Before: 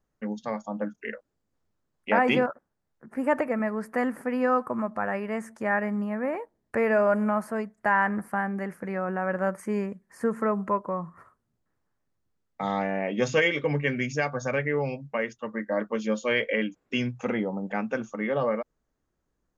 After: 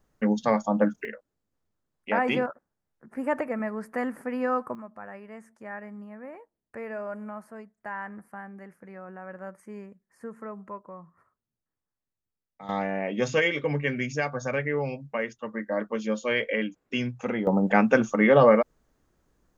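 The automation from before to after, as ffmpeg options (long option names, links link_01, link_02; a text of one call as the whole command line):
ffmpeg -i in.wav -af "asetnsamples=nb_out_samples=441:pad=0,asendcmd='1.05 volume volume -3dB;4.75 volume volume -13dB;12.69 volume volume -1dB;17.47 volume volume 9.5dB',volume=8.5dB" out.wav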